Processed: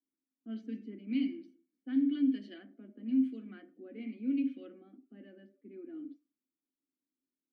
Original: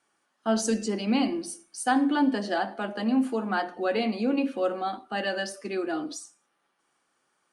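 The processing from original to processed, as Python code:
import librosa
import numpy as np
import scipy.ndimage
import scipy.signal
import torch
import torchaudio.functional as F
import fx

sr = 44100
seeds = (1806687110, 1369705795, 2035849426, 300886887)

y = fx.vowel_filter(x, sr, vowel='i')
y = fx.env_lowpass(y, sr, base_hz=500.0, full_db=-26.5)
y = y * 10.0 ** (-3.0 / 20.0)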